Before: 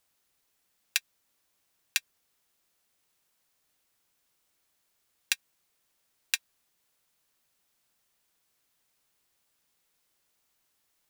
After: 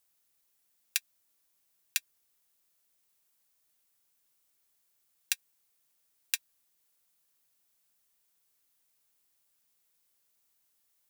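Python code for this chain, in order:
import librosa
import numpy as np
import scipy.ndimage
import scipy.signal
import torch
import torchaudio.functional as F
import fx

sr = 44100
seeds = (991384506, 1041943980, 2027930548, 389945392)

y = fx.high_shelf(x, sr, hz=6900.0, db=10.0)
y = y * 10.0 ** (-6.5 / 20.0)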